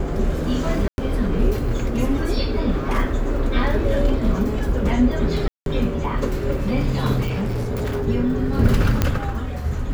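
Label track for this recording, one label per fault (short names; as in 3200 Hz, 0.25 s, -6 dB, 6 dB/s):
0.880000	0.980000	gap 0.101 s
5.480000	5.660000	gap 0.182 s
7.260000	8.080000	clipped -20 dBFS
9.020000	9.020000	pop -4 dBFS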